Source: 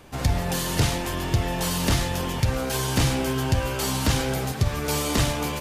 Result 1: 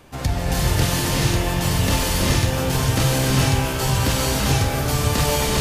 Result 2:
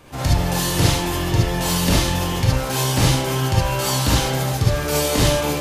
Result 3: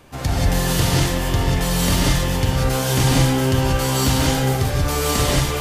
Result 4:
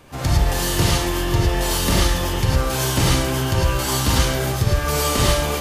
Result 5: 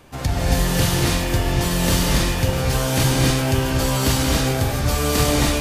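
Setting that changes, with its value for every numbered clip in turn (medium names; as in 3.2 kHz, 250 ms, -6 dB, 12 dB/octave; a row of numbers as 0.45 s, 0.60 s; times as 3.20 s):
gated-style reverb, gate: 470 ms, 90 ms, 210 ms, 130 ms, 310 ms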